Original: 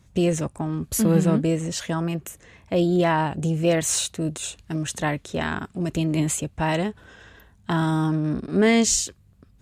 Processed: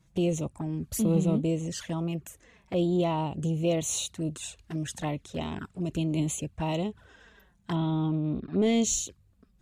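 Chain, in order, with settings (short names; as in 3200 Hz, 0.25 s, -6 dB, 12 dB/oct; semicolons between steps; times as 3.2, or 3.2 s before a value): 7.75–8.62 steep low-pass 4000 Hz 36 dB/oct; soft clip -8.5 dBFS, distortion -25 dB; envelope flanger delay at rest 6.6 ms, full sweep at -22 dBFS; gain -4.5 dB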